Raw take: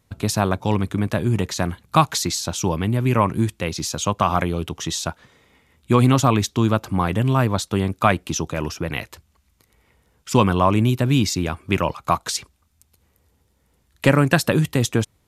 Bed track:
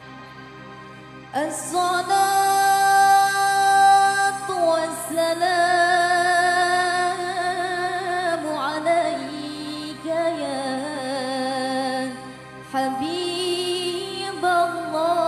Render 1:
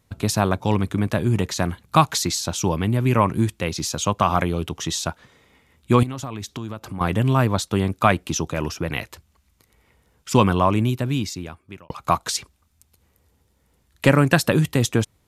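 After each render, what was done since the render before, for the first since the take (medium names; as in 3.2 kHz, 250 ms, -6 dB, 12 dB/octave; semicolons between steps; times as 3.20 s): 6.03–7.01 s: compression 4:1, threshold -29 dBFS; 10.46–11.90 s: fade out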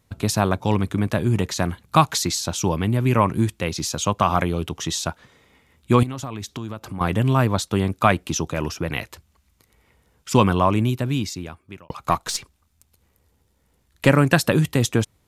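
12.09–14.06 s: partial rectifier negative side -3 dB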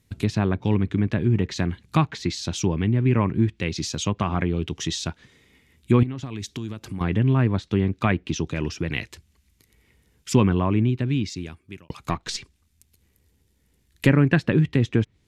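low-pass that closes with the level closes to 2.1 kHz, closed at -17 dBFS; high-order bell 850 Hz -9 dB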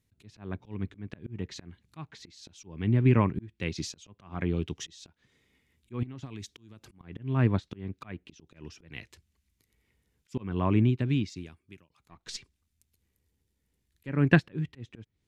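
slow attack 289 ms; upward expansion 1.5:1, over -38 dBFS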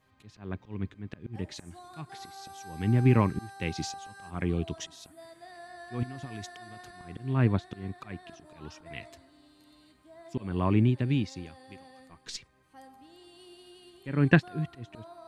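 add bed track -28.5 dB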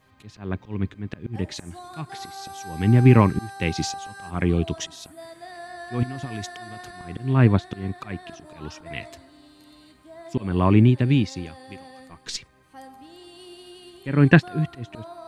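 trim +8 dB; peak limiter -1 dBFS, peak gain reduction 2.5 dB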